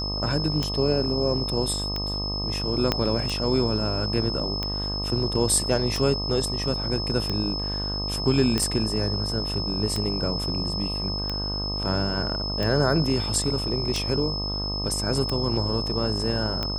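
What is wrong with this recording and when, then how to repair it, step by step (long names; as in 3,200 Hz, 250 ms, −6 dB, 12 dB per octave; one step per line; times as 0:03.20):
mains buzz 50 Hz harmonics 25 −31 dBFS
scratch tick 45 rpm −14 dBFS
whistle 5,200 Hz −29 dBFS
0:02.92: click −7 dBFS
0:08.58: click −10 dBFS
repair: click removal
hum removal 50 Hz, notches 25
notch filter 5,200 Hz, Q 30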